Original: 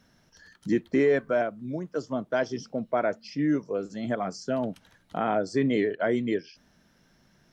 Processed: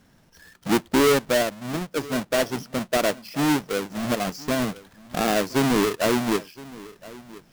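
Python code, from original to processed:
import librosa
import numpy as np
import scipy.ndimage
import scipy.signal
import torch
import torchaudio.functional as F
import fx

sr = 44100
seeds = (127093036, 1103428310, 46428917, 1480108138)

y = fx.halfwave_hold(x, sr)
y = y + 10.0 ** (-20.0 / 20.0) * np.pad(y, (int(1017 * sr / 1000.0), 0))[:len(y)]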